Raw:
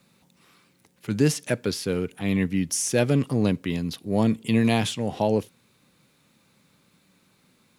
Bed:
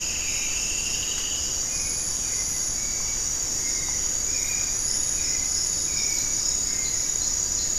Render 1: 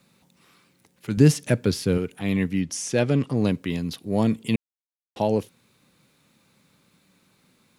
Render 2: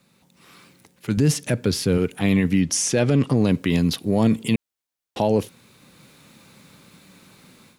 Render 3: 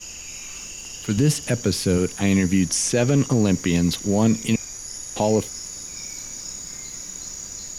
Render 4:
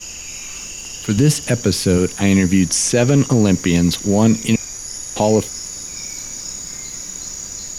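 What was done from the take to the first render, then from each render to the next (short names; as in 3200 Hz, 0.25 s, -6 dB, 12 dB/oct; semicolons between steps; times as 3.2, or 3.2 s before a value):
1.17–1.98 low shelf 230 Hz +10.5 dB; 2.61–3.37 air absorption 53 m; 4.56–5.16 mute
AGC gain up to 12 dB; limiter -10 dBFS, peak gain reduction 9 dB
add bed -9.5 dB
gain +5 dB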